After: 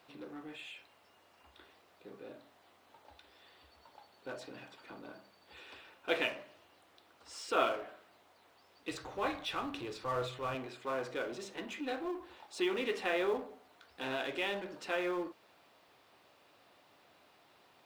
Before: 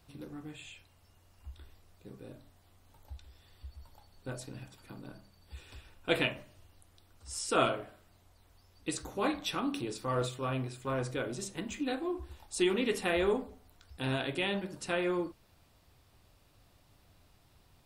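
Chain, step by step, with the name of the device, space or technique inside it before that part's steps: phone line with mismatched companding (band-pass 380–3500 Hz; companding laws mixed up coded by mu); 8.91–10.55 s: resonant low shelf 160 Hz +10.5 dB, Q 1.5; trim -2.5 dB

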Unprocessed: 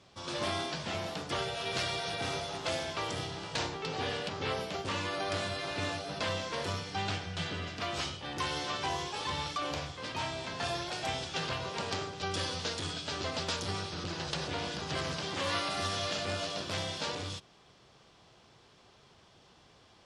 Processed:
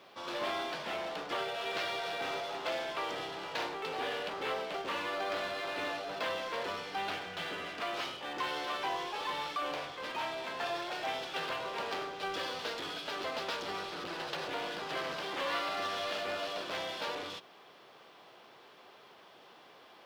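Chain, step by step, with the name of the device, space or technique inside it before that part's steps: phone line with mismatched companding (band-pass 360–3200 Hz; companding laws mixed up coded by mu); trim -1.5 dB

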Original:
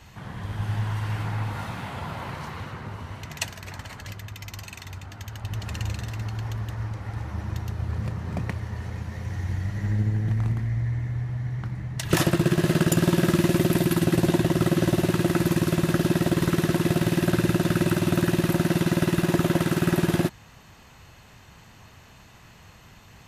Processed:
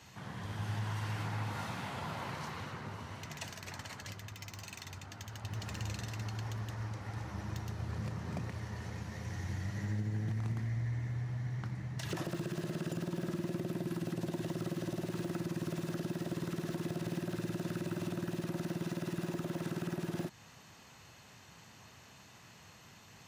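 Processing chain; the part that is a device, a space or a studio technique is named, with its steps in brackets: broadcast voice chain (high-pass 110 Hz; de-esser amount 90%; compression 3:1, threshold -25 dBFS, peak gain reduction 7 dB; peaking EQ 5.8 kHz +5 dB 1.1 oct; peak limiter -22 dBFS, peak gain reduction 7 dB); trim -6 dB

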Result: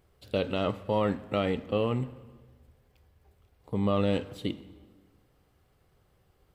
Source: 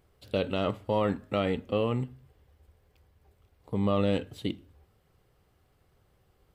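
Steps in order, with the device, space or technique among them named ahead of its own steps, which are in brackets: saturated reverb return (on a send at -13 dB: reverberation RT60 1.2 s, pre-delay 24 ms + saturation -30.5 dBFS, distortion -7 dB)

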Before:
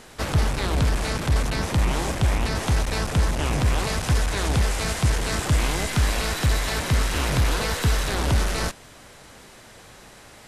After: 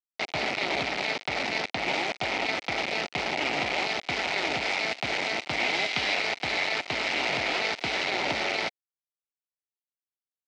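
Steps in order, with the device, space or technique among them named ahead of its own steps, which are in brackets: 5.73–6.15 s: peaking EQ 3.7 kHz +5.5 dB 1.5 oct; hand-held game console (bit crusher 4-bit; cabinet simulation 410–4400 Hz, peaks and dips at 480 Hz -5 dB, 730 Hz +3 dB, 1.1 kHz -10 dB, 1.6 kHz -8 dB, 2.2 kHz +7 dB, 3.4 kHz -3 dB)

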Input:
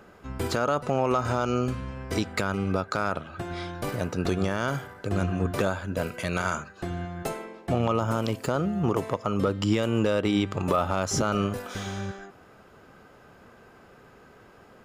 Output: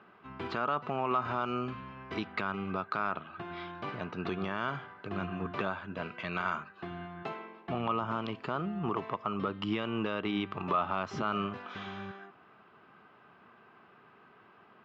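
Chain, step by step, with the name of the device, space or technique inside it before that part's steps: kitchen radio (cabinet simulation 170–3600 Hz, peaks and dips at 280 Hz -4 dB, 520 Hz -10 dB, 1.1 kHz +6 dB, 2.7 kHz +3 dB); trim -5.5 dB

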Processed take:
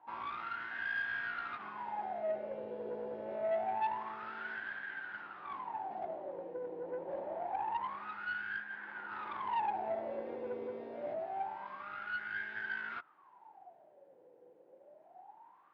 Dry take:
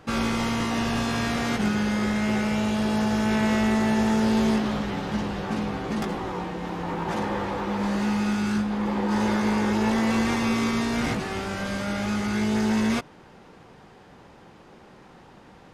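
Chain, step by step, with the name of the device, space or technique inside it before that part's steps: wah-wah guitar rig (wah-wah 0.26 Hz 490–1600 Hz, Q 21; valve stage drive 35 dB, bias 0.25; cabinet simulation 110–4100 Hz, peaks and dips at 220 Hz -6 dB, 330 Hz +4 dB, 490 Hz -7 dB, 1.2 kHz -9 dB); trim +9.5 dB

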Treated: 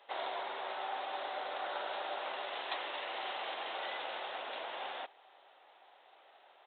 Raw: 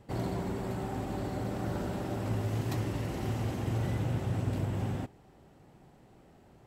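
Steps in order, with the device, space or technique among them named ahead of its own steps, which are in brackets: musical greeting card (resampled via 8 kHz; high-pass 640 Hz 24 dB/octave; peaking EQ 3.9 kHz +11 dB 0.59 oct); trim +4 dB

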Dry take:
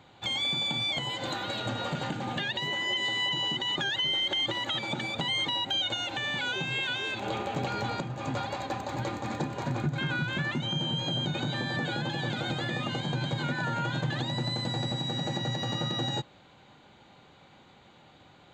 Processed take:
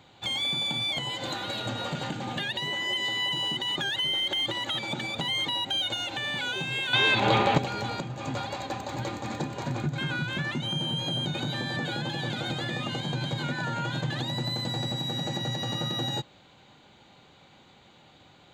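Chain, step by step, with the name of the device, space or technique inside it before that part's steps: exciter from parts (in parallel at -5 dB: high-pass 2.1 kHz 12 dB/octave + saturation -39 dBFS, distortion -7 dB); 6.93–7.58 s: on the sum: graphic EQ 125/250/500/1000/2000/4000 Hz +12/+6/+6/+10/+9/+8 dB

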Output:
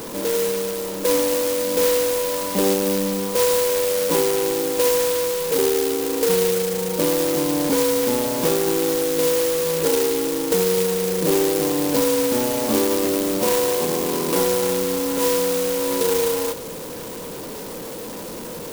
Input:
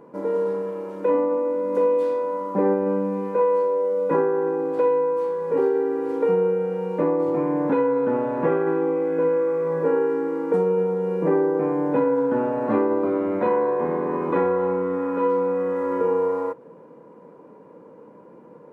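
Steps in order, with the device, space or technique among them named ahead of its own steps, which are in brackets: early CD player with a faulty converter (jump at every zero crossing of -28 dBFS; sampling jitter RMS 0.15 ms)

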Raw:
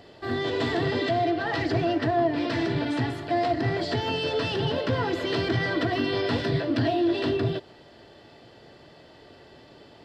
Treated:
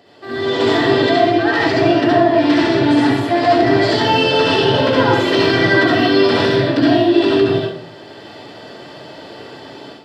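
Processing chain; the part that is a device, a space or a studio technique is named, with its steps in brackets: far laptop microphone (reverberation RT60 0.60 s, pre-delay 60 ms, DRR -3.5 dB; high-pass 170 Hz 12 dB/octave; level rider gain up to 11.5 dB)

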